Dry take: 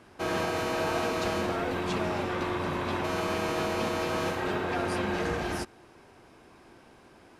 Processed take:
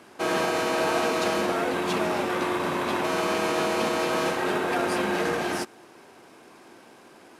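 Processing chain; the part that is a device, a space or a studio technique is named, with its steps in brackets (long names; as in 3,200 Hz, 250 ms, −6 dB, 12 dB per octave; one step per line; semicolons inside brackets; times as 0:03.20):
early wireless headset (high-pass filter 200 Hz 12 dB per octave; variable-slope delta modulation 64 kbit/s)
level +5 dB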